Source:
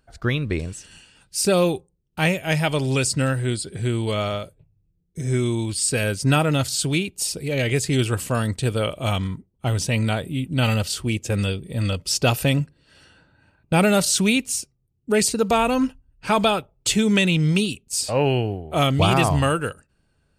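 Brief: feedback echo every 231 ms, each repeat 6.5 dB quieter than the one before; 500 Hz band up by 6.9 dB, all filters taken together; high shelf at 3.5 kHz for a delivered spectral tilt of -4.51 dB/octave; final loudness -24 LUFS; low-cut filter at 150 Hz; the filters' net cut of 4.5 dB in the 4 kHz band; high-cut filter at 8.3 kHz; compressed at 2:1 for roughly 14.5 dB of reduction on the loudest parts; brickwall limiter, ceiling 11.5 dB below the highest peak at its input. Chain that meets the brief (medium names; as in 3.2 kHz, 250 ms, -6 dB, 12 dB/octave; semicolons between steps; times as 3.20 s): high-pass 150 Hz; low-pass 8.3 kHz; peaking EQ 500 Hz +8.5 dB; treble shelf 3.5 kHz +4 dB; peaking EQ 4 kHz -9 dB; compression 2:1, threshold -37 dBFS; peak limiter -27 dBFS; feedback delay 231 ms, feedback 47%, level -6.5 dB; trim +12 dB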